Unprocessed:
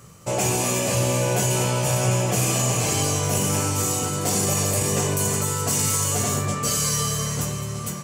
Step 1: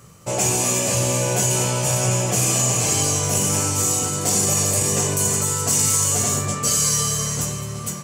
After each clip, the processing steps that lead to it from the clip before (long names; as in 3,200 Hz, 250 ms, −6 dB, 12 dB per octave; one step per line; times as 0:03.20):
dynamic equaliser 7,100 Hz, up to +6 dB, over −38 dBFS, Q 1.1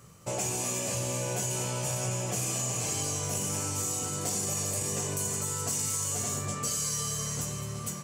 downward compressor 2.5 to 1, threshold −24 dBFS, peak gain reduction 6.5 dB
level −6.5 dB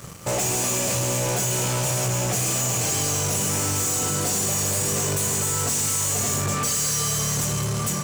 leveller curve on the samples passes 5
level −2.5 dB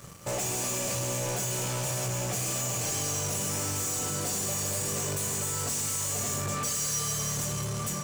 tuned comb filter 580 Hz, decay 0.19 s, harmonics all, mix 60%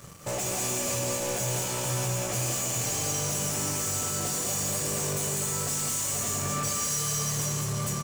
single-tap delay 198 ms −4 dB